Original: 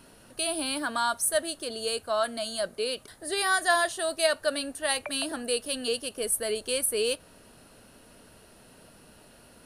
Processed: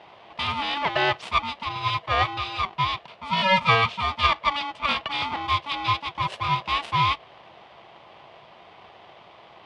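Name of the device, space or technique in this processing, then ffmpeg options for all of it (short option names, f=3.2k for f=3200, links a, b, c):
ring modulator pedal into a guitar cabinet: -af "aeval=exprs='val(0)*sgn(sin(2*PI*570*n/s))':c=same,highpass=100,equalizer=f=280:t=q:w=4:g=-9,equalizer=f=680:t=q:w=4:g=8,equalizer=f=1k:t=q:w=4:g=5,equalizer=f=1.5k:t=q:w=4:g=-3,equalizer=f=2.9k:t=q:w=4:g=6,lowpass=f=3.8k:w=0.5412,lowpass=f=3.8k:w=1.3066,volume=4dB"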